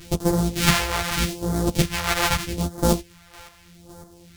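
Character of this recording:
a buzz of ramps at a fixed pitch in blocks of 256 samples
phaser sweep stages 2, 0.81 Hz, lowest notch 220–2,500 Hz
chopped level 1.8 Hz, depth 60%, duty 25%
a shimmering, thickened sound

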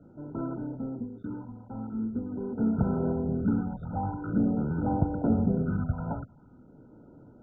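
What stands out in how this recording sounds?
phaser sweep stages 4, 0.45 Hz, lowest notch 350–4,000 Hz
a quantiser's noise floor 10 bits, dither none
MP2

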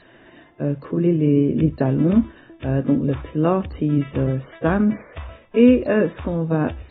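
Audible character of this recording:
a quantiser's noise floor 12 bits, dither none
AAC

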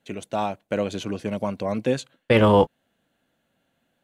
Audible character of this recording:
background noise floor −73 dBFS
spectral slope −5.5 dB per octave

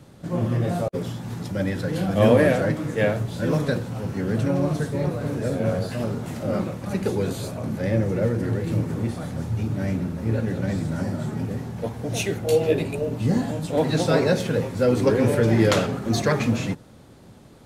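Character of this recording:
background noise floor −47 dBFS
spectral slope −6.5 dB per octave

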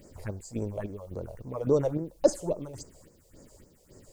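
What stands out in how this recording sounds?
chopped level 1.8 Hz, depth 60%, duty 55%
a quantiser's noise floor 12 bits, dither triangular
phaser sweep stages 4, 3.6 Hz, lowest notch 230–3,400 Hz

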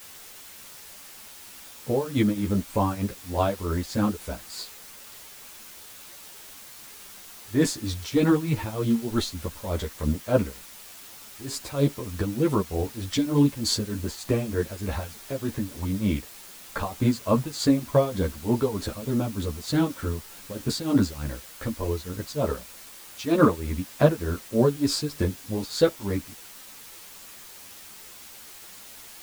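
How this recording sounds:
tremolo triangle 3.3 Hz, depth 90%
a quantiser's noise floor 8 bits, dither triangular
a shimmering, thickened sound

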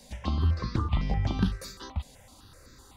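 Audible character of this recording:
notches that jump at a steady rate 7.9 Hz 340–3,000 Hz

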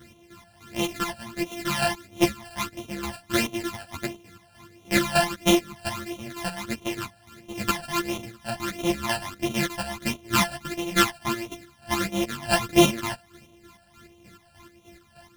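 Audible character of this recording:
a buzz of ramps at a fixed pitch in blocks of 128 samples
phaser sweep stages 12, 1.5 Hz, lowest notch 360–1,600 Hz
chopped level 3.3 Hz, depth 60%, duty 40%
a shimmering, thickened sound

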